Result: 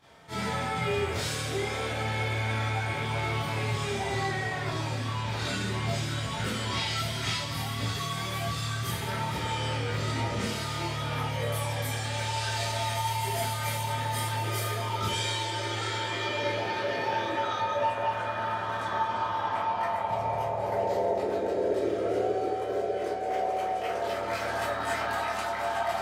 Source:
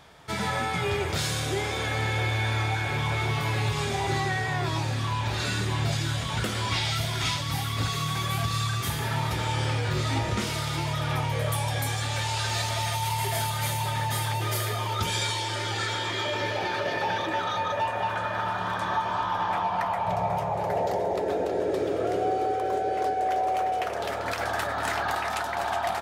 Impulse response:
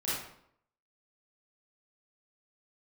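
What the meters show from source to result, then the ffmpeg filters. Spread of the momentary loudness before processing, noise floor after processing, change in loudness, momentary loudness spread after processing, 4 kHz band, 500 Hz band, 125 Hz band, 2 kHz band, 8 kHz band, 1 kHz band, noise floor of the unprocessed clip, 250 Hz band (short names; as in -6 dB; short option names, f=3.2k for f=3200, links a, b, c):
2 LU, -33 dBFS, -2.5 dB, 3 LU, -3.0 dB, -0.5 dB, -4.0 dB, -2.5 dB, -3.5 dB, -2.5 dB, -31 dBFS, -2.0 dB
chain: -filter_complex "[1:a]atrim=start_sample=2205,asetrate=70560,aresample=44100[a];[0:a][a]afir=irnorm=-1:irlink=0,volume=-4.5dB"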